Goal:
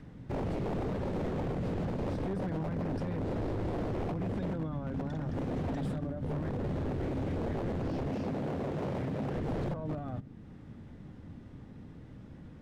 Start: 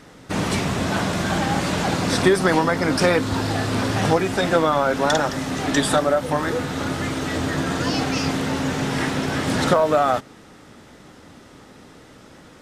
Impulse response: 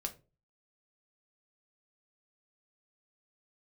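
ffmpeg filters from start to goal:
-filter_complex "[0:a]alimiter=limit=0.178:level=0:latency=1:release=124,bass=f=250:g=12,treble=f=4000:g=-12,bandreject=f=1300:w=12,asplit=2[s0][s1];[1:a]atrim=start_sample=2205,lowpass=1200[s2];[s1][s2]afir=irnorm=-1:irlink=0,volume=0.178[s3];[s0][s3]amix=inputs=2:normalize=0,acrossover=split=320[s4][s5];[s5]acompressor=threshold=0.00112:ratio=1.5[s6];[s4][s6]amix=inputs=2:normalize=0,aeval=exprs='0.106*(abs(mod(val(0)/0.106+3,4)-2)-1)':c=same,asettb=1/sr,asplit=3[s7][s8][s9];[s7]atrim=end=8.104[s10];[s8]atrim=start=8.1:end=9.33,asetpts=PTS-STARTPTS,afade=t=in:d=0.004:c=qsin,afade=t=out:st=1.226:d=0.004:c=qsin,highpass=89[s11];[s9]atrim=start=9.326[s12];[s10][s11]acrossfade=d=0.004:c1=hsin:c2=qsin[s13];[s13][s12]acrossfade=d=0.004:c1=qsin:c2=hsin,volume=0.355"

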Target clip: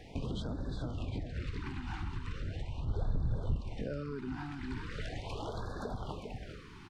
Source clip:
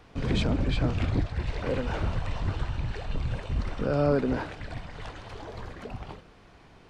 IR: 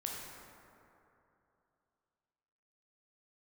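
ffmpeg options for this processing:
-filter_complex "[0:a]aecho=1:1:402:0.398,acompressor=threshold=0.0141:ratio=12,asettb=1/sr,asplit=3[s0][s1][s2];[s0]atrim=end=2.854[s3];[s1]atrim=start=2.85:end=3.56,asetpts=PTS-STARTPTS,afade=t=in:d=0.004:c=qsin,afade=t=out:st=0.706:d=0.004:c=qsin,tiltshelf=f=720:g=7[s4];[s2]atrim=start=3.556[s5];[s3][s4]acrossfade=d=0.004:c1=hsin:c2=qsin[s6];[s6][s5]acrossfade=d=0.004:c1=qsin:c2=hsin,afftfilt=real='re*(1-between(b*sr/1024,500*pow(2500/500,0.5+0.5*sin(2*PI*0.39*pts/sr))/1.41,500*pow(2500/500,0.5+0.5*sin(2*PI*0.39*pts/sr))*1.41))':imag='im*(1-between(b*sr/1024,500*pow(2500/500,0.5+0.5*sin(2*PI*0.39*pts/sr))/1.41,500*pow(2500/500,0.5+0.5*sin(2*PI*0.39*pts/sr))*1.41))':win_size=1024:overlap=0.75,volume=1.41"

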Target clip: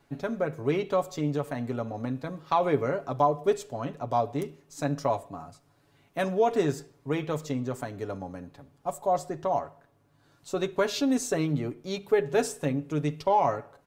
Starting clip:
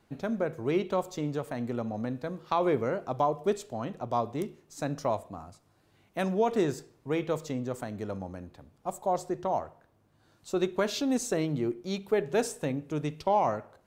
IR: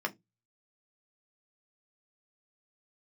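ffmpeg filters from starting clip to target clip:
-filter_complex "[0:a]aecho=1:1:7.1:0.58,asplit=2[s0][s1];[1:a]atrim=start_sample=2205[s2];[s1][s2]afir=irnorm=-1:irlink=0,volume=0.0841[s3];[s0][s3]amix=inputs=2:normalize=0"

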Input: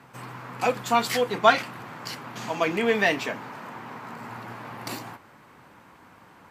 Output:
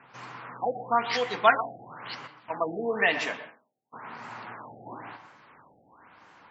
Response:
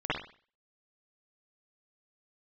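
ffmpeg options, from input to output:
-filter_complex "[0:a]asplit=3[s0][s1][s2];[s0]afade=t=out:st=2.26:d=0.02[s3];[s1]agate=range=0.0112:threshold=0.0251:ratio=16:detection=peak,afade=t=in:st=2.26:d=0.02,afade=t=out:st=3.92:d=0.02[s4];[s2]afade=t=in:st=3.92:d=0.02[s5];[s3][s4][s5]amix=inputs=3:normalize=0,lowshelf=f=460:g=-10.5,asplit=2[s6][s7];[1:a]atrim=start_sample=2205,adelay=67[s8];[s7][s8]afir=irnorm=-1:irlink=0,volume=0.112[s9];[s6][s9]amix=inputs=2:normalize=0,afftfilt=real='re*lt(b*sr/1024,800*pow(7900/800,0.5+0.5*sin(2*PI*0.99*pts/sr)))':imag='im*lt(b*sr/1024,800*pow(7900/800,0.5+0.5*sin(2*PI*0.99*pts/sr)))':win_size=1024:overlap=0.75"

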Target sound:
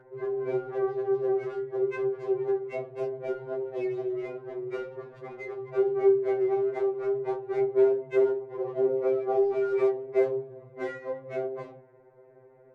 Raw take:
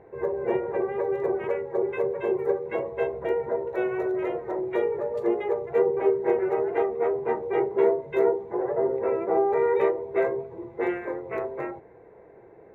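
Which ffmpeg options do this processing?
-af "adynamicsmooth=sensitivity=8:basefreq=2600,aeval=exprs='val(0)+0.00708*sin(2*PI*1500*n/s)':c=same,afftfilt=real='re*2.45*eq(mod(b,6),0)':imag='im*2.45*eq(mod(b,6),0)':win_size=2048:overlap=0.75,volume=0.75"

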